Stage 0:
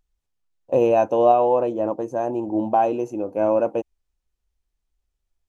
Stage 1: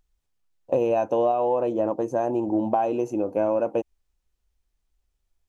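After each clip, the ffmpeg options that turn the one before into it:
-af "acompressor=threshold=0.0794:ratio=5,volume=1.33"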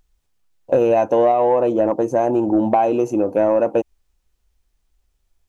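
-af "asoftclip=type=tanh:threshold=0.251,volume=2.37"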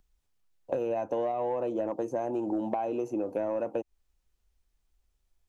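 -filter_complex "[0:a]acrossover=split=210|2200[s0][s1][s2];[s0]acompressor=threshold=0.00891:ratio=4[s3];[s1]acompressor=threshold=0.0794:ratio=4[s4];[s2]acompressor=threshold=0.00282:ratio=4[s5];[s3][s4][s5]amix=inputs=3:normalize=0,volume=0.447"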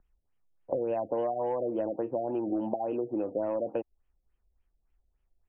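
-af "afftfilt=real='re*lt(b*sr/1024,710*pow(3400/710,0.5+0.5*sin(2*PI*3.5*pts/sr)))':imag='im*lt(b*sr/1024,710*pow(3400/710,0.5+0.5*sin(2*PI*3.5*pts/sr)))':win_size=1024:overlap=0.75"

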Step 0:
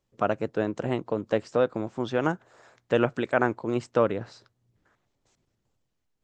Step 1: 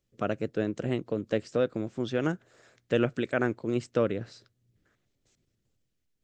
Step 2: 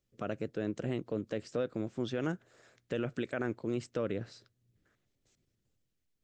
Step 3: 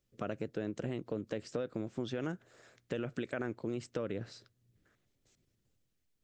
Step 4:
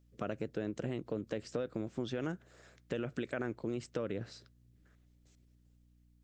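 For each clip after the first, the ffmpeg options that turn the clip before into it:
-af "equalizer=f=920:t=o:w=1:g=-12.5"
-af "alimiter=limit=0.0944:level=0:latency=1:release=44,volume=0.708"
-af "acompressor=threshold=0.02:ratio=6,volume=1.19"
-af "aeval=exprs='val(0)+0.000562*(sin(2*PI*60*n/s)+sin(2*PI*2*60*n/s)/2+sin(2*PI*3*60*n/s)/3+sin(2*PI*4*60*n/s)/4+sin(2*PI*5*60*n/s)/5)':c=same"

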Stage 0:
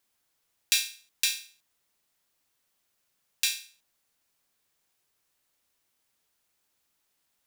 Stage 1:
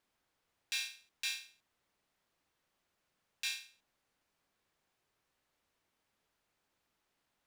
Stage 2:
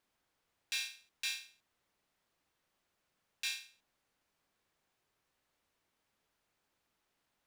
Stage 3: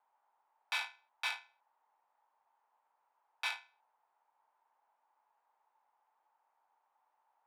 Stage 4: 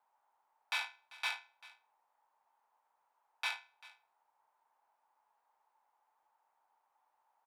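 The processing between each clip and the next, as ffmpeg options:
-af "lowpass=f=1900:p=1,alimiter=level_in=1.33:limit=0.0631:level=0:latency=1:release=65,volume=0.75,volume=1.26"
-af "asoftclip=type=hard:threshold=0.0422"
-af "adynamicsmooth=sensitivity=5:basefreq=1300,afreqshift=-97,highpass=f=880:t=q:w=7.4,volume=1.68"
-af "aecho=1:1:392:0.1"

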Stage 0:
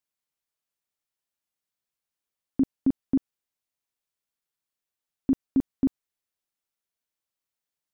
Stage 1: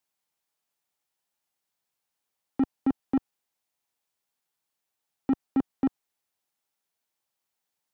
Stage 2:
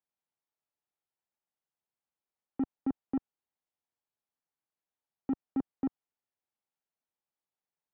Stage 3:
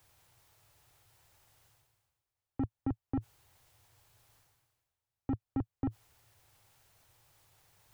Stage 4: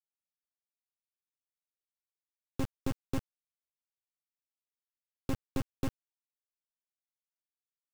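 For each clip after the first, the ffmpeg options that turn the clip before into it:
-filter_complex "[0:a]highpass=f=99:p=1,equalizer=f=820:t=o:w=0.43:g=6,acrossover=split=330[s0][s1];[s0]asoftclip=type=tanh:threshold=0.0251[s2];[s2][s1]amix=inputs=2:normalize=0,volume=1.68"
-af "lowpass=f=1200:p=1,volume=0.473"
-af "lowshelf=f=150:t=q:w=3:g=10.5,areverse,acompressor=mode=upward:threshold=0.00447:ratio=2.5,areverse,volume=1.19"
-af "acrusher=bits=4:dc=4:mix=0:aa=0.000001,volume=1.5"

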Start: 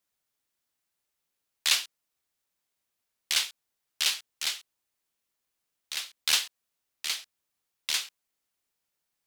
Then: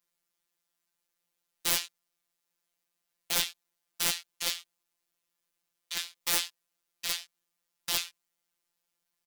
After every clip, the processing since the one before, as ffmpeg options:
-filter_complex "[0:a]asplit=2[s0][s1];[s1]adelay=18,volume=0.501[s2];[s0][s2]amix=inputs=2:normalize=0,aeval=exprs='(mod(8.91*val(0)+1,2)-1)/8.91':c=same,afftfilt=real='hypot(re,im)*cos(PI*b)':imag='0':win_size=1024:overlap=0.75,volume=1.26"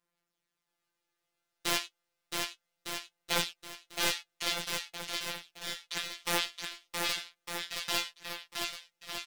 -filter_complex "[0:a]lowpass=f=2900:p=1,flanger=delay=5.7:depth=3.1:regen=49:speed=0.32:shape=sinusoidal,asplit=2[s0][s1];[s1]aecho=0:1:670|1206|1635|1978|2252:0.631|0.398|0.251|0.158|0.1[s2];[s0][s2]amix=inputs=2:normalize=0,volume=2.24"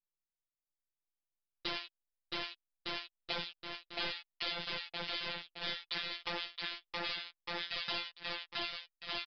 -af "anlmdn=0.0001,acompressor=threshold=0.0224:ratio=8,aresample=11025,asoftclip=type=tanh:threshold=0.0398,aresample=44100,volume=1.58"

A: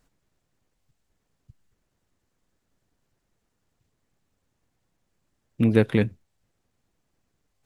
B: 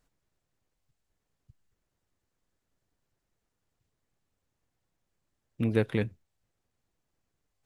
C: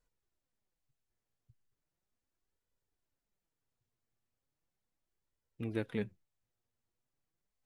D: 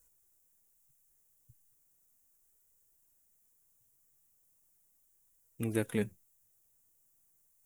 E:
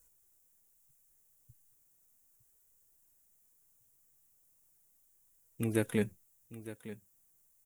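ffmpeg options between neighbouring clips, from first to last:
-af "equalizer=f=220:w=1.5:g=-3,volume=0.501"
-af "flanger=delay=2:depth=6.7:regen=41:speed=0.37:shape=sinusoidal,volume=0.562"
-af "aexciter=amount=6.7:drive=7.1:freq=6300,volume=1.58"
-af "aecho=1:1:909:0.188,volume=1.19"

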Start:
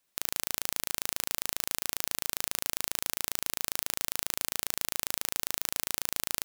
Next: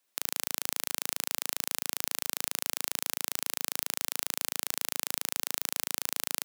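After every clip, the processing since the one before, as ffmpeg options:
-af "highpass=220"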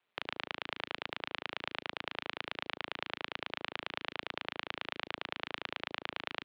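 -af "highpass=f=280:t=q:w=0.5412,highpass=f=280:t=q:w=1.307,lowpass=f=3500:t=q:w=0.5176,lowpass=f=3500:t=q:w=0.7071,lowpass=f=3500:t=q:w=1.932,afreqshift=-81,aeval=exprs='val(0)*sin(2*PI*87*n/s)':c=same,volume=1.58"

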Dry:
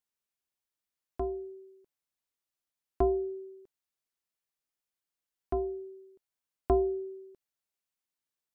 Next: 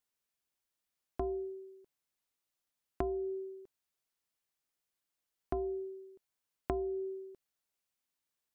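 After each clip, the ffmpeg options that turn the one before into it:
-af "acompressor=threshold=0.02:ratio=16,volume=1.26"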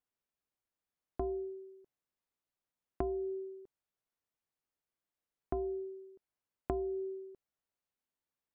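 -af "highshelf=f=2300:g=-12"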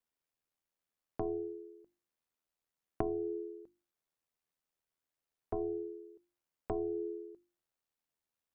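-af "aeval=exprs='val(0)*sin(2*PI*40*n/s)':c=same,bandreject=f=50:t=h:w=6,bandreject=f=100:t=h:w=6,bandreject=f=150:t=h:w=6,bandreject=f=200:t=h:w=6,bandreject=f=250:t=h:w=6,bandreject=f=300:t=h:w=6,bandreject=f=350:t=h:w=6,volume=1.5"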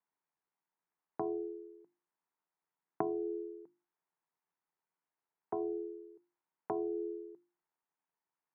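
-af "highpass=f=160:w=0.5412,highpass=f=160:w=1.3066,equalizer=f=160:t=q:w=4:g=4,equalizer=f=230:t=q:w=4:g=-7,equalizer=f=550:t=q:w=4:g=-7,equalizer=f=920:t=q:w=4:g=8,lowpass=f=2100:w=0.5412,lowpass=f=2100:w=1.3066,volume=1.12"

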